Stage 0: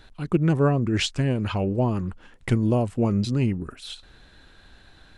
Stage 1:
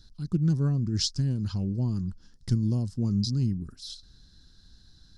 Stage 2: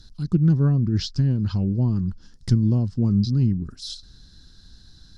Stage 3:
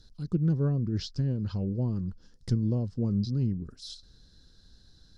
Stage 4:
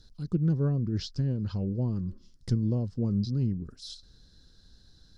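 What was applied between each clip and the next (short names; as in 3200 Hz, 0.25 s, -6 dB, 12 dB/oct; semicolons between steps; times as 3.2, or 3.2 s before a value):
EQ curve 190 Hz 0 dB, 610 Hz -20 dB, 1600 Hz -14 dB, 2400 Hz -24 dB, 5100 Hz +11 dB, 7900 Hz -4 dB; gain -2 dB
treble ducked by the level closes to 2900 Hz, closed at -24.5 dBFS; gain +6.5 dB
bell 500 Hz +9.5 dB 0.73 oct; gain -8.5 dB
spectral repair 2.1–2.39, 210–1900 Hz both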